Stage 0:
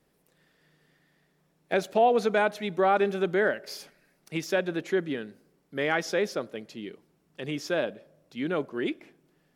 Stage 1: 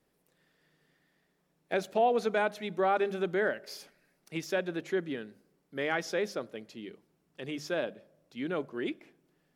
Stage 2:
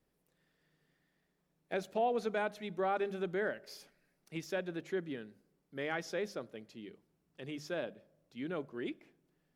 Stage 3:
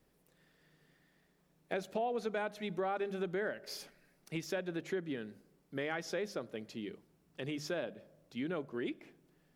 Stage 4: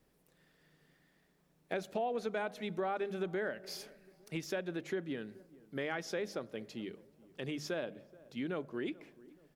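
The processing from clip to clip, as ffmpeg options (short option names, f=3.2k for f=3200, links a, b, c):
-af "bandreject=f=50:t=h:w=6,bandreject=f=100:t=h:w=6,bandreject=f=150:t=h:w=6,bandreject=f=200:t=h:w=6,volume=-4.5dB"
-af "lowshelf=f=130:g=8,volume=-6.5dB"
-af "acompressor=threshold=-44dB:ratio=2.5,volume=7dB"
-filter_complex "[0:a]asplit=2[a][b];[b]adelay=429,lowpass=f=830:p=1,volume=-20dB,asplit=2[c][d];[d]adelay=429,lowpass=f=830:p=1,volume=0.52,asplit=2[e][f];[f]adelay=429,lowpass=f=830:p=1,volume=0.52,asplit=2[g][h];[h]adelay=429,lowpass=f=830:p=1,volume=0.52[i];[a][c][e][g][i]amix=inputs=5:normalize=0"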